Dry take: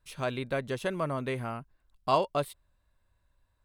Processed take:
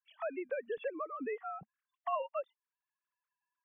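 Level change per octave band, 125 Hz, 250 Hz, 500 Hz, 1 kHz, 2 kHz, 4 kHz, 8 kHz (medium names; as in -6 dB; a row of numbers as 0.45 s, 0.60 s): -30.5 dB, -10.0 dB, -6.5 dB, -7.5 dB, -8.5 dB, under -15 dB, under -30 dB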